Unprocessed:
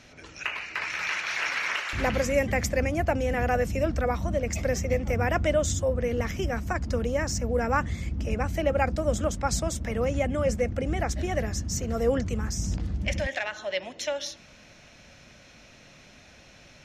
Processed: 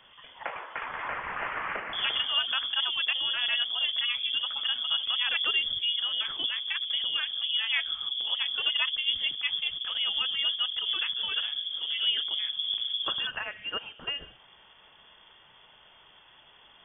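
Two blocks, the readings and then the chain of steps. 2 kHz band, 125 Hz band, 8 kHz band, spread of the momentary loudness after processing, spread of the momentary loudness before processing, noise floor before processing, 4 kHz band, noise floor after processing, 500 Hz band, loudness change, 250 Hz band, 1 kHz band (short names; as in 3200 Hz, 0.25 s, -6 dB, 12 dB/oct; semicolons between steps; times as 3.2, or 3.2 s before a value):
-1.0 dB, under -30 dB, under -40 dB, 9 LU, 6 LU, -53 dBFS, +15.5 dB, -57 dBFS, -22.0 dB, 0.0 dB, under -20 dB, -7.0 dB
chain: inverted band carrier 3400 Hz; gain -4 dB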